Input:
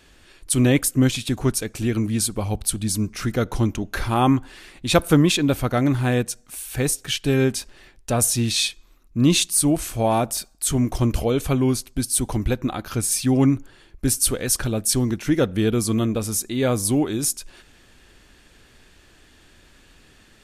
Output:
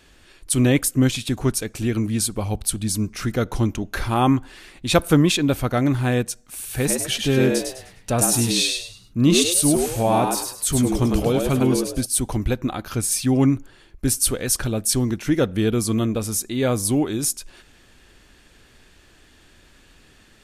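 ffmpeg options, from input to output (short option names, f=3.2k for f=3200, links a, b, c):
-filter_complex "[0:a]asettb=1/sr,asplit=3[a][b][c];[a]atrim=end=6.434[d];[b]atrim=start=6.43:end=12.06,asetpts=PTS-STARTPTS,afade=t=in:d=0.004:c=qsin,afade=t=out:st=5.626:d=0.004:c=qsin,asplit=5[e][f][g][h][i];[f]adelay=102,afreqshift=86,volume=-4dB[j];[g]adelay=204,afreqshift=172,volume=-13.9dB[k];[h]adelay=306,afreqshift=258,volume=-23.8dB[l];[i]adelay=408,afreqshift=344,volume=-33.7dB[m];[e][j][k][l][m]amix=inputs=5:normalize=0,atrim=end_sample=248283[n];[c]atrim=start=12.056[o];[d][n]acrossfade=d=0.004:c1=hsin:c2=qsin[p];[p][o]acrossfade=d=0.004:c1=qsin:c2=hsin"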